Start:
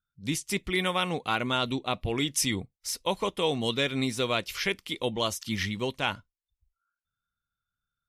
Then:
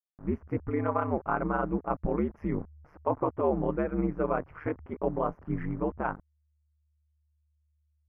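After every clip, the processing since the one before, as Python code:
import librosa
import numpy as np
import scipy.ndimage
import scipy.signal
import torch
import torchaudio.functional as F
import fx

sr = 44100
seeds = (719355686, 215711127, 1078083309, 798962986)

y = fx.delta_hold(x, sr, step_db=-43.5)
y = scipy.signal.sosfilt(scipy.signal.cheby2(4, 50, 3500.0, 'lowpass', fs=sr, output='sos'), y)
y = y * np.sin(2.0 * np.pi * 75.0 * np.arange(len(y)) / sr)
y = F.gain(torch.from_numpy(y), 4.0).numpy()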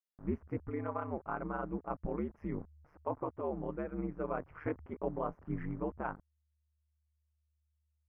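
y = fx.rider(x, sr, range_db=10, speed_s=0.5)
y = F.gain(torch.from_numpy(y), -8.0).numpy()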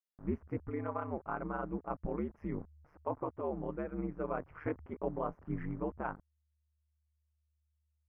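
y = x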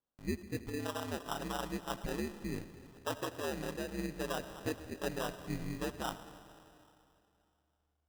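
y = fx.rev_freeverb(x, sr, rt60_s=2.8, hf_ratio=1.0, predelay_ms=35, drr_db=10.5)
y = fx.sample_hold(y, sr, seeds[0], rate_hz=2200.0, jitter_pct=0)
y = F.gain(torch.from_numpy(y), -1.0).numpy()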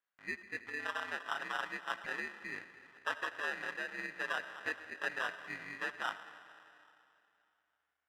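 y = fx.bandpass_q(x, sr, hz=1800.0, q=2.8)
y = F.gain(torch.from_numpy(y), 11.5).numpy()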